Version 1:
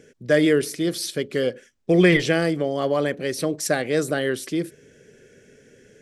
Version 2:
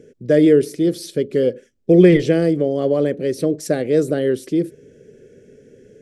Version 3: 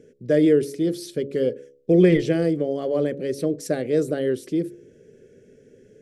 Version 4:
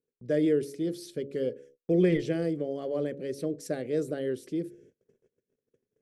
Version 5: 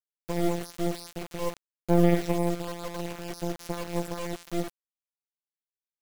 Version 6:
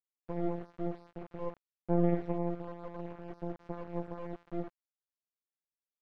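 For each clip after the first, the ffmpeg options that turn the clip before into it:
ffmpeg -i in.wav -af "lowshelf=frequency=660:width_type=q:width=1.5:gain=9.5,volume=-5dB" out.wav
ffmpeg -i in.wav -af "bandreject=frequency=69.8:width_type=h:width=4,bandreject=frequency=139.6:width_type=h:width=4,bandreject=frequency=209.4:width_type=h:width=4,bandreject=frequency=279.2:width_type=h:width=4,bandreject=frequency=349:width_type=h:width=4,bandreject=frequency=418.8:width_type=h:width=4,bandreject=frequency=488.6:width_type=h:width=4,bandreject=frequency=558.4:width_type=h:width=4,volume=-4.5dB" out.wav
ffmpeg -i in.wav -af "agate=range=-30dB:threshold=-47dB:ratio=16:detection=peak,volume=-8dB" out.wav
ffmpeg -i in.wav -af "afftfilt=real='hypot(re,im)*cos(PI*b)':imag='0':win_size=1024:overlap=0.75,acrusher=bits=4:dc=4:mix=0:aa=0.000001,volume=5.5dB" out.wav
ffmpeg -i in.wav -af "lowpass=1300,volume=-7dB" out.wav

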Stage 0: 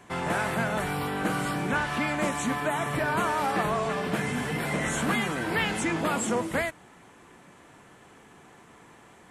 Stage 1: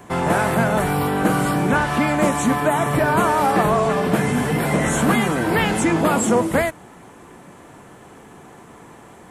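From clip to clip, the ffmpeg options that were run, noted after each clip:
ffmpeg -i in.wav -filter_complex "[0:a]highshelf=frequency=9300:gain=11,acrossover=split=1200[link_01][link_02];[link_01]acontrast=86[link_03];[link_03][link_02]amix=inputs=2:normalize=0,volume=3.5dB" out.wav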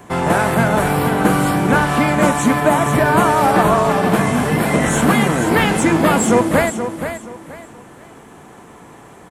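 ffmpeg -i in.wav -af "aecho=1:1:476|952|1428:0.398|0.115|0.0335,aeval=exprs='0.562*(cos(1*acos(clip(val(0)/0.562,-1,1)))-cos(1*PI/2))+0.0141*(cos(7*acos(clip(val(0)/0.562,-1,1)))-cos(7*PI/2))':channel_layout=same,volume=3.5dB" out.wav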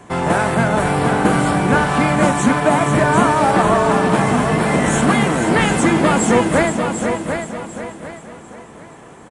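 ffmpeg -i in.wav -af "aecho=1:1:745|1490|2235|2980:0.447|0.134|0.0402|0.0121,aresample=22050,aresample=44100,volume=-1dB" out.wav

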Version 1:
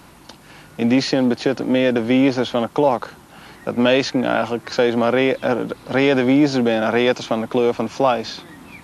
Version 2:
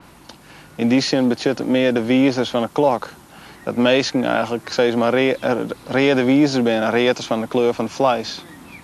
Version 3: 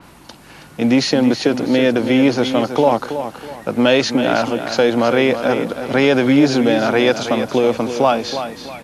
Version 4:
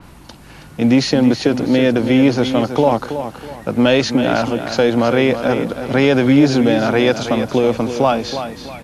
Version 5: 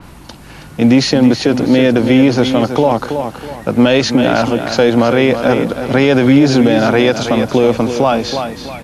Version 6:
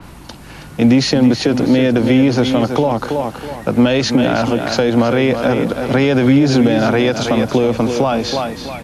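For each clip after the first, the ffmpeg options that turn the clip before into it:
ffmpeg -i in.wav -af "adynamicequalizer=threshold=0.0112:dfrequency=4500:dqfactor=0.7:tfrequency=4500:tqfactor=0.7:attack=5:release=100:ratio=0.375:range=2:mode=boostabove:tftype=highshelf" out.wav
ffmpeg -i in.wav -af "aecho=1:1:324|648|972|1296:0.335|0.111|0.0365|0.012,volume=2dB" out.wav
ffmpeg -i in.wav -af "lowshelf=frequency=130:gain=12,volume=-1dB" out.wav
ffmpeg -i in.wav -af "alimiter=limit=-6dB:level=0:latency=1:release=46,volume=4.5dB" out.wav
ffmpeg -i in.wav -filter_complex "[0:a]acrossover=split=220[link_01][link_02];[link_02]acompressor=threshold=-12dB:ratio=6[link_03];[link_01][link_03]amix=inputs=2:normalize=0" out.wav

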